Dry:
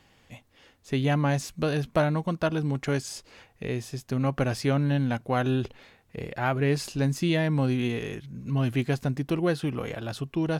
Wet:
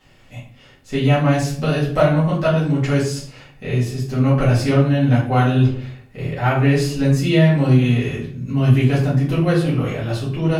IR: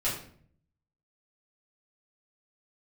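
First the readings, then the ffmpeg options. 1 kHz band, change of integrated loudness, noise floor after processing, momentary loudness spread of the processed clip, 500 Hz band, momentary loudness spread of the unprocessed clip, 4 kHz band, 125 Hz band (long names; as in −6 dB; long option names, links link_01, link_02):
+8.0 dB, +10.0 dB, −48 dBFS, 10 LU, +8.5 dB, 10 LU, +7.5 dB, +11.5 dB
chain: -filter_complex "[1:a]atrim=start_sample=2205[link_01];[0:a][link_01]afir=irnorm=-1:irlink=0"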